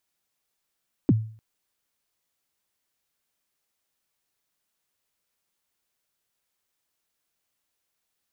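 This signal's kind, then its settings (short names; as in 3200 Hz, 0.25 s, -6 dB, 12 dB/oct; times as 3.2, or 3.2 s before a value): kick drum length 0.30 s, from 350 Hz, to 110 Hz, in 34 ms, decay 0.46 s, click off, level -12 dB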